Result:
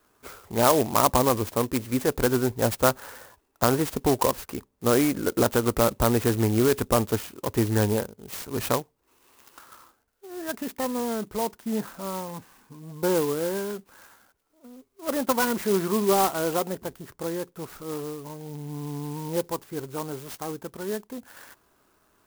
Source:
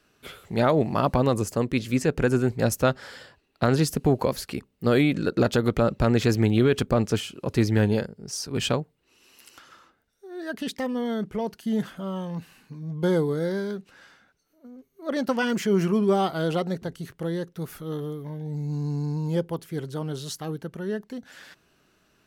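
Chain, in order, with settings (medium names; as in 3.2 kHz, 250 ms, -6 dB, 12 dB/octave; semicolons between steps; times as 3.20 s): fifteen-band graphic EQ 160 Hz -9 dB, 1 kHz +8 dB, 4 kHz -11 dB; sampling jitter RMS 0.082 ms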